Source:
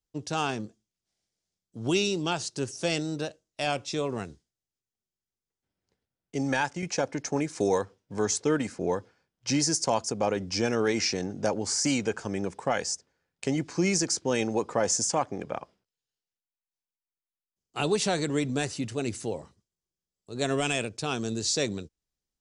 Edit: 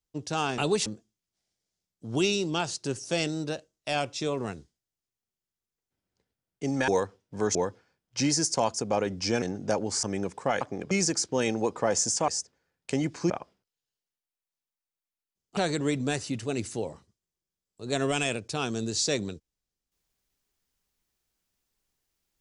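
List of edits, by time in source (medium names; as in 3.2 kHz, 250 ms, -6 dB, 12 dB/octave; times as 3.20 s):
6.60–7.66 s: delete
8.33–8.85 s: delete
10.72–11.17 s: delete
11.78–12.24 s: delete
12.82–13.84 s: swap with 15.21–15.51 s
17.78–18.06 s: move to 0.58 s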